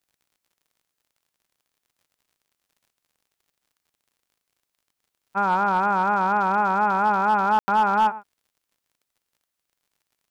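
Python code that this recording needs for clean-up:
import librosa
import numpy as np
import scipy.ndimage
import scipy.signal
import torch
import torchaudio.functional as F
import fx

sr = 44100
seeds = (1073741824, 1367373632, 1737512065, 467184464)

y = fx.fix_declip(x, sr, threshold_db=-13.5)
y = fx.fix_declick_ar(y, sr, threshold=6.5)
y = fx.fix_ambience(y, sr, seeds[0], print_start_s=9.18, print_end_s=9.68, start_s=7.59, end_s=7.68)
y = fx.fix_echo_inverse(y, sr, delay_ms=110, level_db=-17.5)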